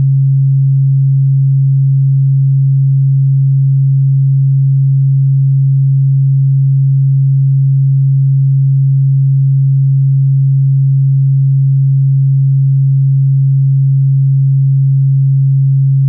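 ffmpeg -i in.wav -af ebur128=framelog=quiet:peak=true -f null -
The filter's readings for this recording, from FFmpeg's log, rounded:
Integrated loudness:
  I:         -10.1 LUFS
  Threshold: -20.1 LUFS
Loudness range:
  LRA:         0.0 LU
  Threshold: -30.1 LUFS
  LRA low:   -10.1 LUFS
  LRA high:  -10.1 LUFS
True peak:
  Peak:       -5.8 dBFS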